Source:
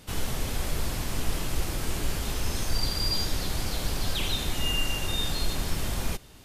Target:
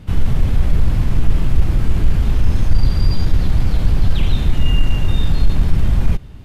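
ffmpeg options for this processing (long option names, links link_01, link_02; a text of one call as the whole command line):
ffmpeg -i in.wav -af "bass=frequency=250:gain=14,treble=frequency=4000:gain=-13,acontrast=26,volume=-1dB" out.wav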